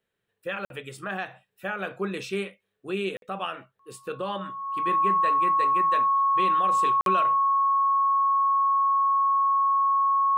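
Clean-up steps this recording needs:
notch filter 1,100 Hz, Q 30
repair the gap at 0:00.65/0:03.17/0:07.01, 52 ms

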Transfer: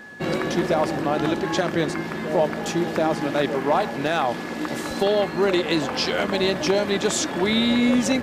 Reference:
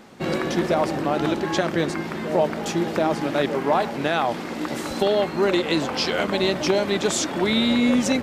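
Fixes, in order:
clipped peaks rebuilt −11 dBFS
notch filter 1,700 Hz, Q 30

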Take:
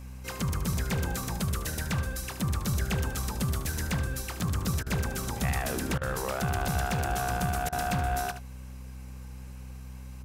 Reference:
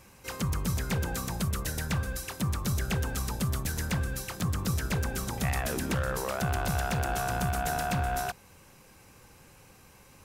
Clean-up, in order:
hum removal 63.8 Hz, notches 4
repair the gap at 0:04.83/0:05.98/0:07.69, 33 ms
echo removal 74 ms −11 dB

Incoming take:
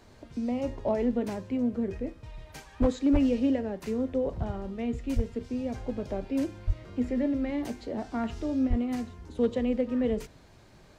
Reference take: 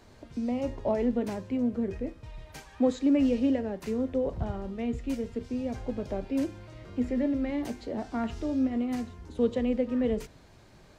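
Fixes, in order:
clipped peaks rebuilt −17 dBFS
high-pass at the plosives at 0:02.80/0:03.12/0:05.15/0:06.66/0:08.69

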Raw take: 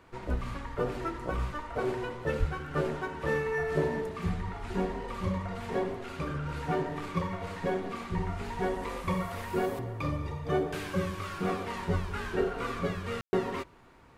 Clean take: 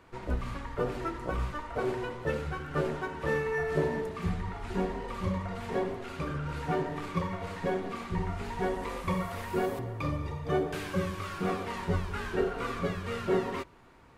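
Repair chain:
high-pass at the plosives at 0:02.39
ambience match 0:13.21–0:13.33

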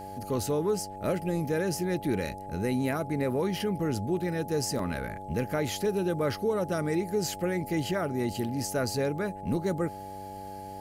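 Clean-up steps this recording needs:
hum removal 97 Hz, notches 7
notch filter 840 Hz, Q 30
repair the gap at 0:04.79, 2.7 ms

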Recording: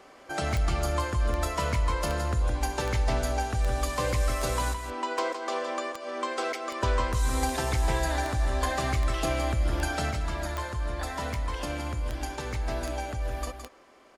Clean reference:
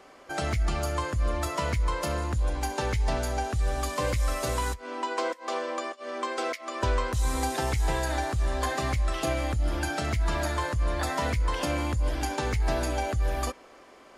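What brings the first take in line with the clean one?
click removal
echo removal 165 ms −8 dB
level 0 dB, from 0:10.11 +5 dB

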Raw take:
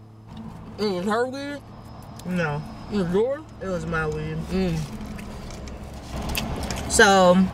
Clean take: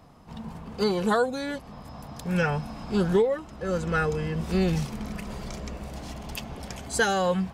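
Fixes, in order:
hum removal 109.2 Hz, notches 4
level 0 dB, from 0:06.13 −9 dB

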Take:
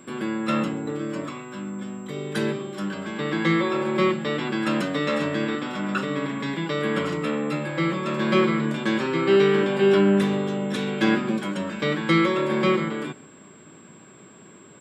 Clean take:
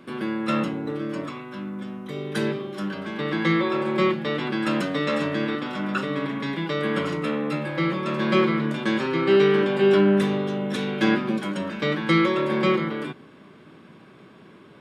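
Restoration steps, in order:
notch filter 7,600 Hz, Q 30
echo removal 131 ms −22 dB

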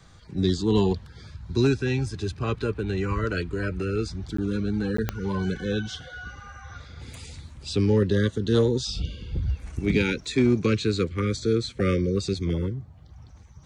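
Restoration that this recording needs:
clipped peaks rebuilt −12.5 dBFS
click removal
repair the gap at 0:04.37/0:04.97, 14 ms

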